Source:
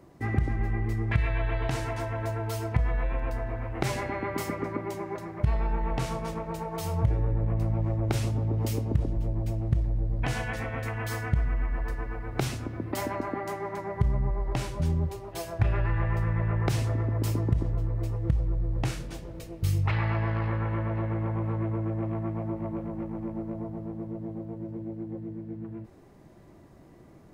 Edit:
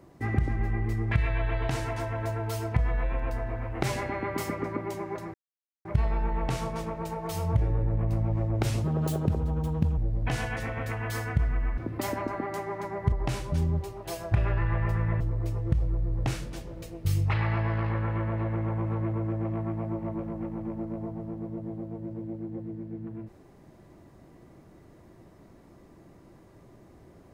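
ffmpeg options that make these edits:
-filter_complex "[0:a]asplit=7[a][b][c][d][e][f][g];[a]atrim=end=5.34,asetpts=PTS-STARTPTS,afade=t=out:st=5.336:d=0.004:c=hsin,apad=pad_dur=0.51[h];[b]atrim=start=5.34:end=8.334,asetpts=PTS-STARTPTS,afade=t=in:d=0.004:c=hsin[i];[c]atrim=start=8.33:end=9.94,asetpts=PTS-STARTPTS,asetrate=62622,aresample=44100[j];[d]atrim=start=9.936:end=11.742[k];[e]atrim=start=12.708:end=14.062[l];[f]atrim=start=14.398:end=16.482[m];[g]atrim=start=17.778[n];[h][i]concat=n=2:v=0:a=1[o];[o][j]acrossfade=d=0.004:c1=hsin:c2=hsin[p];[p][k]acrossfade=d=0.004:c1=hsin:c2=hsin[q];[q][l]acrossfade=d=0.004:c1=hsin:c2=hsin[r];[r][m]acrossfade=d=0.004:c1=hsin:c2=hsin[s];[s][n]acrossfade=d=0.004:c1=hsin:c2=hsin"

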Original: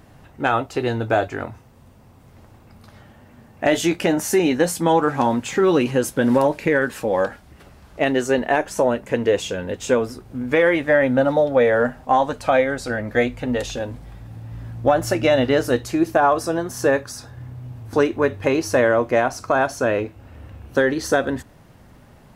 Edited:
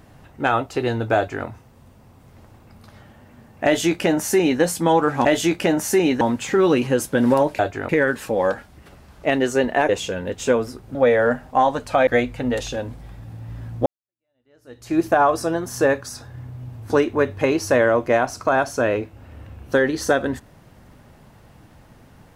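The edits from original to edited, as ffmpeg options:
-filter_complex "[0:a]asplit=9[a][b][c][d][e][f][g][h][i];[a]atrim=end=5.252[j];[b]atrim=start=3.648:end=4.612[k];[c]atrim=start=5.248:end=6.632[l];[d]atrim=start=1.158:end=1.462[m];[e]atrim=start=6.628:end=8.632[n];[f]atrim=start=9.308:end=10.372[o];[g]atrim=start=11.488:end=12.612[p];[h]atrim=start=13.098:end=14.89,asetpts=PTS-STARTPTS,afade=t=out:st=1.788:d=0.004:c=hsin[q];[i]atrim=start=14.89,asetpts=PTS-STARTPTS,afade=t=in:d=1.09:c=exp[r];[j][k]acrossfade=d=0.004:c1=hsin:c2=hsin[s];[s][l]acrossfade=d=0.004:c1=hsin:c2=hsin[t];[t][m]acrossfade=d=0.004:c1=hsin:c2=hsin[u];[u][n]acrossfade=d=0.004:c1=hsin:c2=hsin[v];[v][o]acrossfade=d=0.004:c1=hsin:c2=hsin[w];[w][p]acrossfade=d=0.004:c1=hsin:c2=hsin[x];[q][r]concat=n=2:v=0:a=1[y];[x][y]acrossfade=d=0.004:c1=hsin:c2=hsin"

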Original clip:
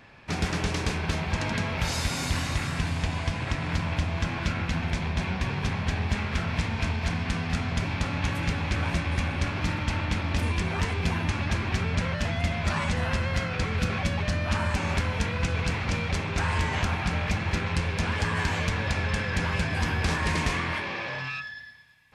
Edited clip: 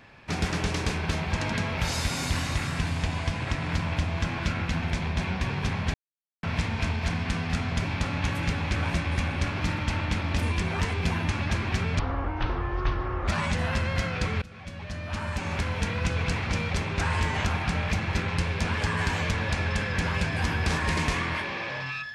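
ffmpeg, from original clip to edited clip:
-filter_complex "[0:a]asplit=6[a][b][c][d][e][f];[a]atrim=end=5.94,asetpts=PTS-STARTPTS,afade=t=out:st=5.936:d=0.004:c=hsin[g];[b]atrim=start=5.94:end=6.43,asetpts=PTS-STARTPTS,volume=0[h];[c]atrim=start=6.43:end=11.994,asetpts=PTS-STARTPTS,afade=t=in:d=0.004:c=hsin[i];[d]atrim=start=11.99:end=12.66,asetpts=PTS-STARTPTS,asetrate=22932,aresample=44100,atrim=end_sample=56821,asetpts=PTS-STARTPTS[j];[e]atrim=start=12.656:end=13.8,asetpts=PTS-STARTPTS,afade=t=out:st=1.14:d=0.004:c=hsin:silence=0.0707946[k];[f]atrim=start=13.8,asetpts=PTS-STARTPTS,afade=t=in:d=1.56:silence=0.0707946[l];[g][h][i]concat=n=3:v=0:a=1[m];[m][j]acrossfade=d=0.004:c1=hsin:c2=hsin[n];[k][l]concat=n=2:v=0:a=1[o];[n][o]acrossfade=d=0.004:c1=hsin:c2=hsin"

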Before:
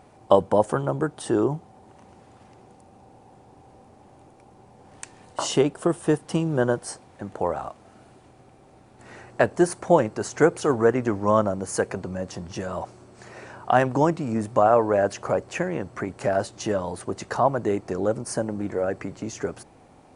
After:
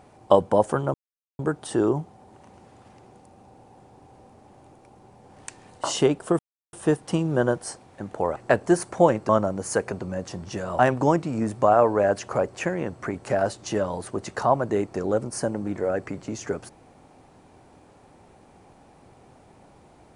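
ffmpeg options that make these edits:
-filter_complex "[0:a]asplit=6[a][b][c][d][e][f];[a]atrim=end=0.94,asetpts=PTS-STARTPTS,afade=t=out:st=0.936:d=0.004:c=hsin,apad=pad_dur=0.45[g];[b]atrim=start=0.94:end=5.94,asetpts=PTS-STARTPTS,afade=t=in:d=0.004:c=hsin,afade=t=out:st=4.996:d=0.004:c=hsin,apad=pad_dur=0.34[h];[c]atrim=start=5.94:end=7.572,asetpts=PTS-STARTPTS,afade=t=in:d=0.004:c=hsin[i];[d]atrim=start=9.258:end=10.192[j];[e]atrim=start=11.318:end=12.822[k];[f]atrim=start=13.728[l];[g][h][i]concat=n=3:v=0:a=1[m];[m][j]acrossfade=d=0.004:c1=hsin:c2=hsin[n];[n][k]acrossfade=d=0.004:c1=hsin:c2=hsin[o];[o][l]acrossfade=d=0.004:c1=hsin:c2=hsin"

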